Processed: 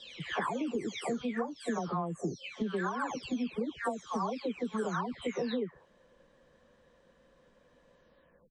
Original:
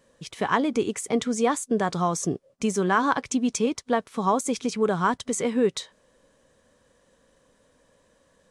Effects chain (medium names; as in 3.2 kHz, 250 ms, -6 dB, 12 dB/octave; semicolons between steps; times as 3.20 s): delay that grows with frequency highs early, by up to 552 ms; low-pass 3.8 kHz 12 dB/octave; compression 10:1, threshold -30 dBFS, peak gain reduction 13.5 dB